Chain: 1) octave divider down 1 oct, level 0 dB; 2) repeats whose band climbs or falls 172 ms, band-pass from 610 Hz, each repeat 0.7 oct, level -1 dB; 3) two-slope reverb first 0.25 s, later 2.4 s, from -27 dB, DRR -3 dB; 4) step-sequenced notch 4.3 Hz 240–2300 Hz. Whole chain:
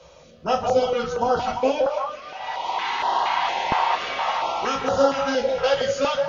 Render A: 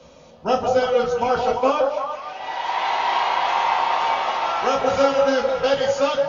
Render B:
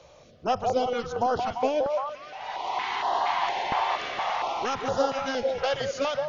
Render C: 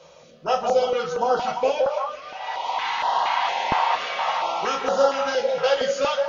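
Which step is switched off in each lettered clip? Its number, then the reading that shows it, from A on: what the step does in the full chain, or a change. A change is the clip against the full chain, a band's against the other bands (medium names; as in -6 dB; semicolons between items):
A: 4, crest factor change -3.5 dB; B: 3, loudness change -5.0 LU; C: 1, 250 Hz band -6.5 dB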